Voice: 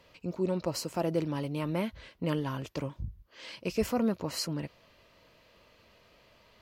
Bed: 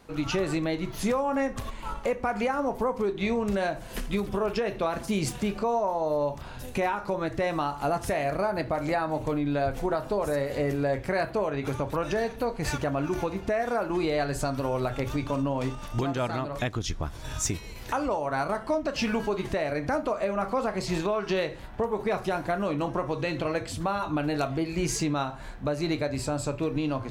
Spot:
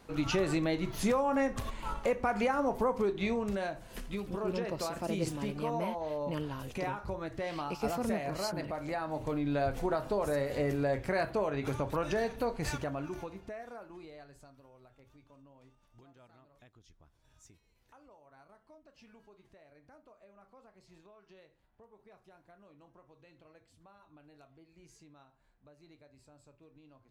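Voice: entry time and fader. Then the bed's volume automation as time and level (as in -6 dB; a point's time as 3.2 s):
4.05 s, -6.0 dB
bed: 3.01 s -2.5 dB
3.86 s -9.5 dB
8.86 s -9.5 dB
9.55 s -4 dB
12.56 s -4 dB
14.73 s -31.5 dB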